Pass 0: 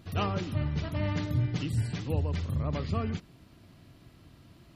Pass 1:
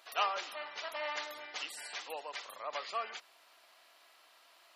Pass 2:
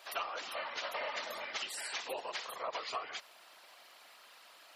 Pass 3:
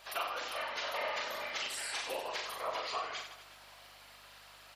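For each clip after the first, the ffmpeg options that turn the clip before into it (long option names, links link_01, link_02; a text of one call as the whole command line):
ffmpeg -i in.wav -af "highpass=frequency=680:width=0.5412,highpass=frequency=680:width=1.3066,volume=2.5dB" out.wav
ffmpeg -i in.wav -af "aeval=exprs='0.106*(cos(1*acos(clip(val(0)/0.106,-1,1)))-cos(1*PI/2))+0.00335*(cos(2*acos(clip(val(0)/0.106,-1,1)))-cos(2*PI/2))':channel_layout=same,afftfilt=real='hypot(re,im)*cos(2*PI*random(0))':imag='hypot(re,im)*sin(2*PI*random(1))':win_size=512:overlap=0.75,acompressor=threshold=-46dB:ratio=12,volume=11dB" out.wav
ffmpeg -i in.wav -filter_complex "[0:a]aeval=exprs='val(0)+0.0002*(sin(2*PI*50*n/s)+sin(2*PI*2*50*n/s)/2+sin(2*PI*3*50*n/s)/3+sin(2*PI*4*50*n/s)/4+sin(2*PI*5*50*n/s)/5)':channel_layout=same,asplit=2[link_01][link_02];[link_02]aecho=0:1:40|92|159.6|247.5|361.7:0.631|0.398|0.251|0.158|0.1[link_03];[link_01][link_03]amix=inputs=2:normalize=0" out.wav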